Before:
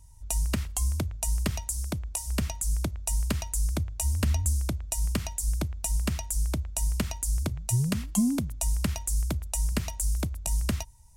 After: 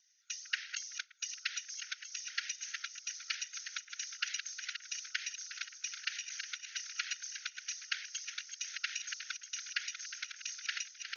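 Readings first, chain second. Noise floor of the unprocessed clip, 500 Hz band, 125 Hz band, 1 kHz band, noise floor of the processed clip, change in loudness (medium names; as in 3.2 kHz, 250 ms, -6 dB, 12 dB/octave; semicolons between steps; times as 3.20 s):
-43 dBFS, under -40 dB, under -40 dB, -11.0 dB, -59 dBFS, -10.0 dB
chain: backward echo that repeats 642 ms, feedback 59%, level -6.5 dB; FFT band-pass 1.4–6.6 kHz; tilt EQ -1.5 dB/octave; whisper effect; trim +4 dB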